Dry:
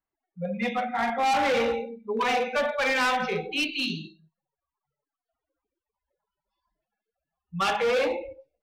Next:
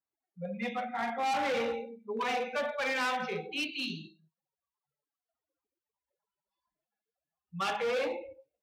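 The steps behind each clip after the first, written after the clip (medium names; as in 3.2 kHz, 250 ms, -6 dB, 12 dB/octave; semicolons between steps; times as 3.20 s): high-pass 92 Hz 12 dB/octave; trim -7 dB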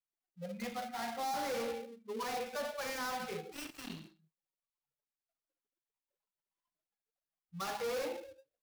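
dead-time distortion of 0.16 ms; trim -5 dB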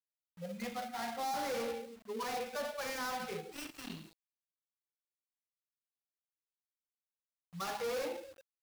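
bit crusher 10-bit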